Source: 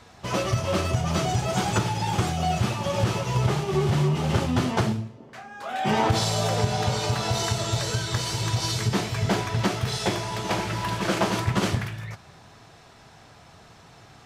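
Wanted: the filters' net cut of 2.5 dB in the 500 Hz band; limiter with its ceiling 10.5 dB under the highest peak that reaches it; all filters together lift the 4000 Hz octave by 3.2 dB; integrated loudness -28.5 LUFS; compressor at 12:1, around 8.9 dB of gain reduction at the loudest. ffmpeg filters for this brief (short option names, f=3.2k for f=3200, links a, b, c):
-af "equalizer=f=500:t=o:g=-3.5,equalizer=f=4k:t=o:g=4,acompressor=threshold=-27dB:ratio=12,volume=7dB,alimiter=limit=-20dB:level=0:latency=1"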